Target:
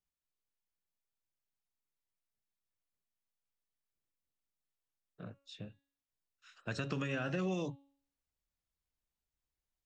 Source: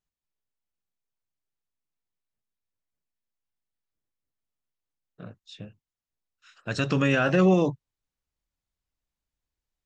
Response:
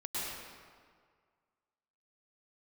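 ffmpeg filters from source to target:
-filter_complex "[0:a]acrossover=split=250|2100[a][b][c];[a]acompressor=threshold=-35dB:ratio=4[d];[b]acompressor=threshold=-34dB:ratio=4[e];[c]acompressor=threshold=-42dB:ratio=4[f];[d][e][f]amix=inputs=3:normalize=0,bandreject=f=278.4:t=h:w=4,bandreject=f=556.8:t=h:w=4,bandreject=f=835.2:t=h:w=4,bandreject=f=1.1136k:t=h:w=4,bandreject=f=1.392k:t=h:w=4,bandreject=f=1.6704k:t=h:w=4,bandreject=f=1.9488k:t=h:w=4,bandreject=f=2.2272k:t=h:w=4,bandreject=f=2.5056k:t=h:w=4,bandreject=f=2.784k:t=h:w=4,bandreject=f=3.0624k:t=h:w=4,bandreject=f=3.3408k:t=h:w=4,bandreject=f=3.6192k:t=h:w=4,bandreject=f=3.8976k:t=h:w=4,bandreject=f=4.176k:t=h:w=4,bandreject=f=4.4544k:t=h:w=4,volume=-5dB"

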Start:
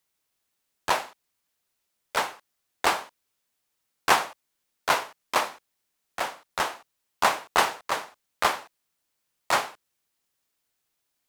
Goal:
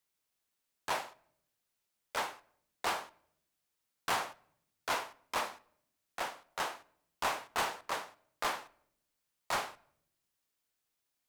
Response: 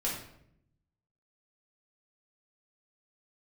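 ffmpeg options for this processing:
-filter_complex "[0:a]asoftclip=type=tanh:threshold=-21dB,asplit=2[a][b];[1:a]atrim=start_sample=2205[c];[b][c]afir=irnorm=-1:irlink=0,volume=-22.5dB[d];[a][d]amix=inputs=2:normalize=0,volume=-6.5dB"

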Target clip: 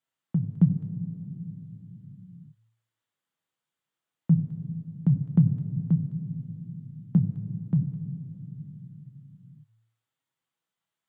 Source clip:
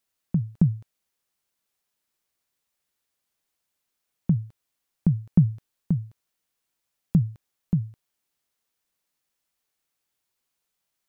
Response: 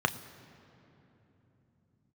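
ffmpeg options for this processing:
-filter_complex "[0:a]bandreject=f=56.59:t=h:w=4,bandreject=f=113.18:t=h:w=4,flanger=delay=7.4:depth=7.3:regen=58:speed=0.39:shape=sinusoidal[a];[1:a]atrim=start_sample=2205,asetrate=48510,aresample=44100[b];[a][b]afir=irnorm=-1:irlink=0,volume=-8dB"

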